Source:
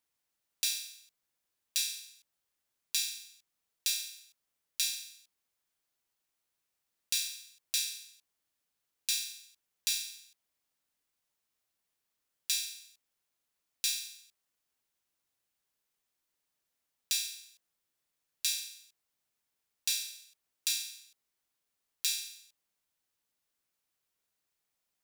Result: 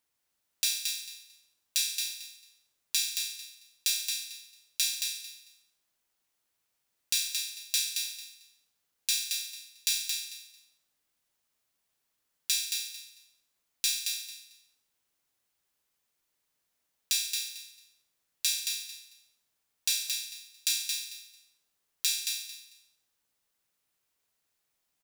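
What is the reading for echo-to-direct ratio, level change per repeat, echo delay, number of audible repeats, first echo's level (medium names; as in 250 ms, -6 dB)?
-5.0 dB, -14.0 dB, 223 ms, 3, -5.0 dB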